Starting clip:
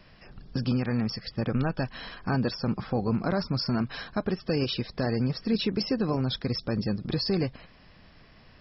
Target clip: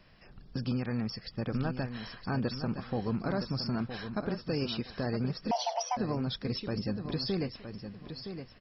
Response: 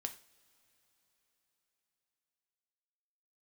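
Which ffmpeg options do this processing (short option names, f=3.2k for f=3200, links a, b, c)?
-filter_complex "[0:a]aecho=1:1:966|1932|2898:0.355|0.0852|0.0204,asettb=1/sr,asplit=3[a][b][c];[a]atrim=end=5.514[d];[b]atrim=start=5.51:end=5.97,asetpts=PTS-STARTPTS,afade=t=in:d=0.004:c=qsin,afade=t=out:st=0.456:d=0.004:c=qsin,afreqshift=480[e];[c]atrim=start=5.966[f];[d][e]acrossfade=d=0.004:c1=hsin:c2=qsin[g];[g][f]acrossfade=d=0.004:c1=qsin:c2=hsin,volume=-5.5dB"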